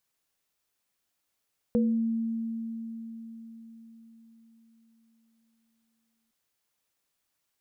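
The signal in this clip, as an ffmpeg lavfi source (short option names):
-f lavfi -i "aevalsrc='0.0891*pow(10,-3*t/4.81)*sin(2*PI*227*t)+0.0708*pow(10,-3*t/0.38)*sin(2*PI*483*t)':d=4.56:s=44100"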